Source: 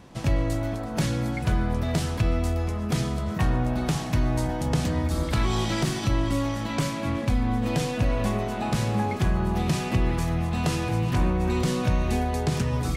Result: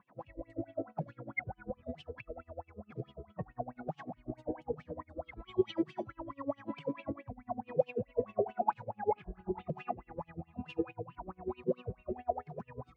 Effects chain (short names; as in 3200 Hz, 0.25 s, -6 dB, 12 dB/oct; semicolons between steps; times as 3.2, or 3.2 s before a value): spectral contrast raised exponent 2; in parallel at +3 dB: vocal rider; on the sum: wah 4.6 Hz 400–3000 Hz, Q 9.6; 9.14–9.68 doubler 22 ms -4 dB; dB-linear tremolo 10 Hz, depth 23 dB; gain +9.5 dB